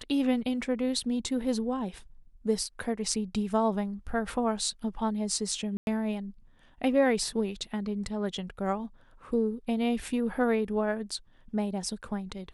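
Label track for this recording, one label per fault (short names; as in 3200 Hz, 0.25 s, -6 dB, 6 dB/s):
5.770000	5.870000	gap 0.101 s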